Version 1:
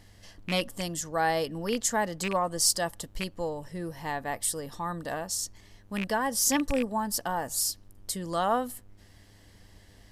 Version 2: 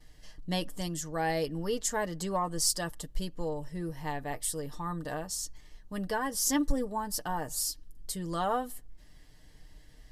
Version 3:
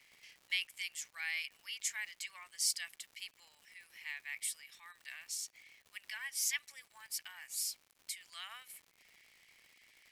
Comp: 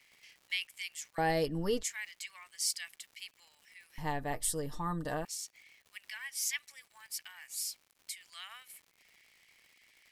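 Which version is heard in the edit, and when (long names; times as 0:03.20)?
3
0:01.18–0:01.83: punch in from 2
0:03.98–0:05.25: punch in from 2
not used: 1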